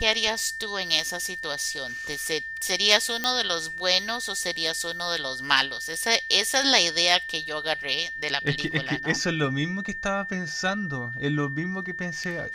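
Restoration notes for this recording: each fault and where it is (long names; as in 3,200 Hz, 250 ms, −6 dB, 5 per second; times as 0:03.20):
whistle 1,800 Hz −32 dBFS
0:03.24: click −9 dBFS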